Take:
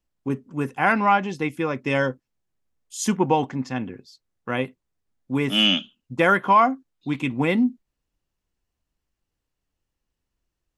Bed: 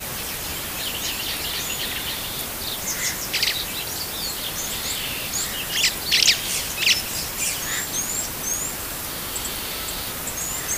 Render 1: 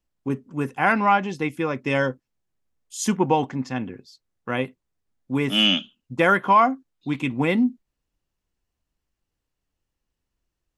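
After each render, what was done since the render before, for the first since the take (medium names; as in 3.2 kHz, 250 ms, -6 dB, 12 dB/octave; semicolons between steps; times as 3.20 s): no audible change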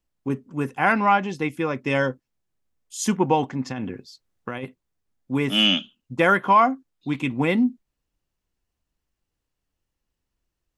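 3.66–4.64 s: compressor with a negative ratio -30 dBFS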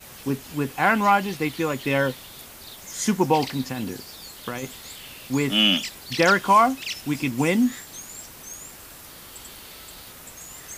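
add bed -13.5 dB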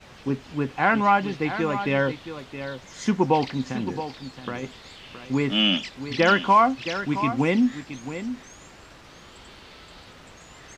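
distance through air 150 m; on a send: delay 670 ms -11 dB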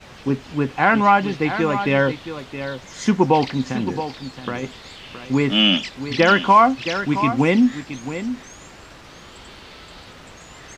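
trim +5 dB; peak limiter -3 dBFS, peak gain reduction 2.5 dB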